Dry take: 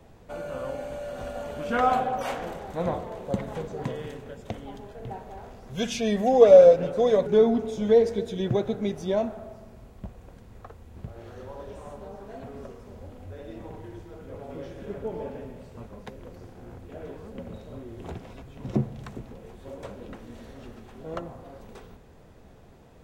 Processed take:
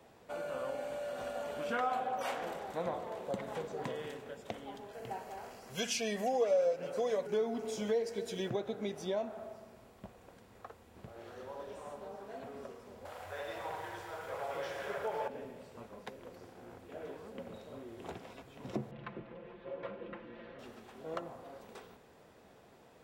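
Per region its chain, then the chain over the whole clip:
4.93–8.50 s: treble shelf 2.3 kHz +8 dB + band-stop 3.6 kHz, Q 5.9
13.05–15.28 s: FFT filter 150 Hz 0 dB, 250 Hz -11 dB, 650 Hz +9 dB, 1.5 kHz +13 dB, 2.7 kHz +9 dB + bit-crushed delay 100 ms, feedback 80%, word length 10-bit, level -13 dB
18.91–20.59 s: low-pass 3 kHz 24 dB/octave + band-stop 760 Hz, Q 5.2 + comb 5.8 ms, depth 80%
whole clip: high-pass 440 Hz 6 dB/octave; band-stop 6.4 kHz, Q 25; compression 2.5:1, threshold -32 dBFS; trim -2 dB

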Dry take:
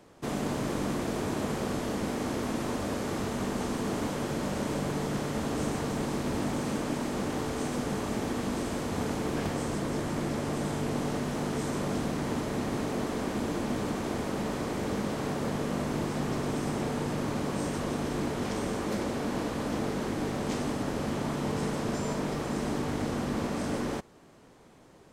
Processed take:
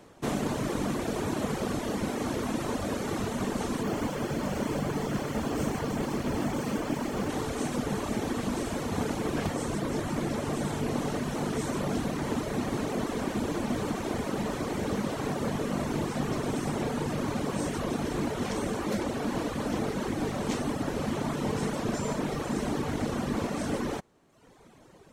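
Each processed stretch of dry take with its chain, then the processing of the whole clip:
3.83–7.29 s: band-stop 3.8 kHz + decimation joined by straight lines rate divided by 2×
whole clip: band-stop 4.9 kHz, Q 20; reverb removal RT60 1 s; trim +3.5 dB

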